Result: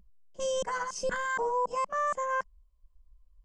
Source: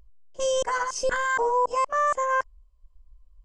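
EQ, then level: bell 190 Hz +13.5 dB 0.56 oct; -6.5 dB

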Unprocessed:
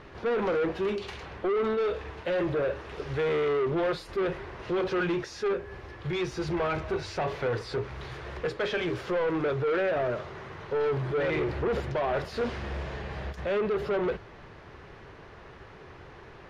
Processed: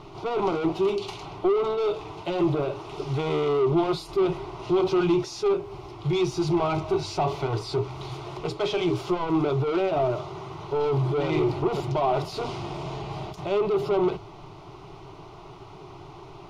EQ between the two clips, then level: fixed phaser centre 340 Hz, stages 8; +7.5 dB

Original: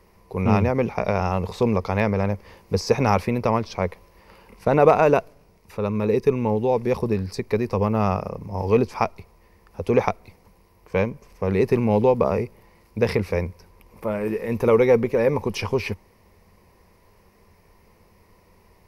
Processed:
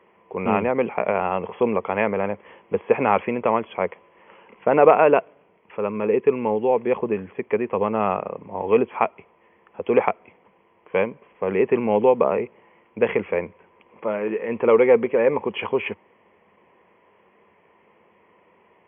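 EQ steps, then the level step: HPF 280 Hz 12 dB/oct; brick-wall FIR low-pass 3400 Hz; +2.0 dB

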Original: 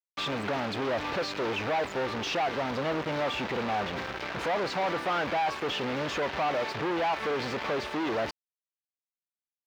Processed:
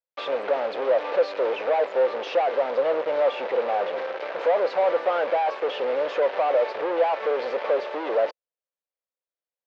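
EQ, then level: resonant high-pass 520 Hz, resonance Q 4.9; air absorption 180 m; 0.0 dB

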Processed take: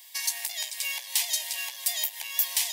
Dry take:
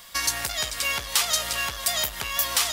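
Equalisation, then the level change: ladder high-pass 800 Hz, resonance 30%; Butterworth band-stop 1300 Hz, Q 1.4; high shelf 9300 Hz +9.5 dB; 0.0 dB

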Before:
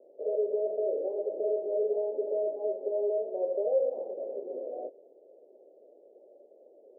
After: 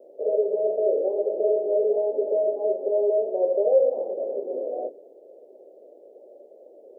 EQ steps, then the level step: notches 60/120/180/240/300/360/420 Hz; +8.0 dB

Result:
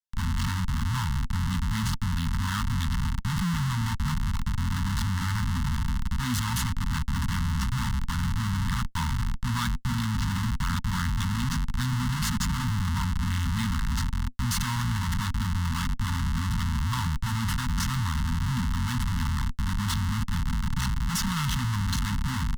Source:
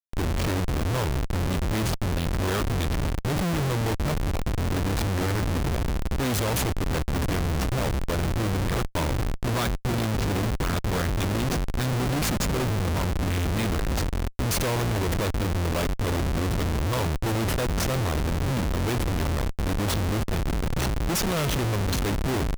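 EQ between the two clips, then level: Chebyshev band-stop 250–890 Hz, order 5; Butterworth band-stop 2400 Hz, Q 6.6; high shelf 12000 Hz -9.5 dB; 0.0 dB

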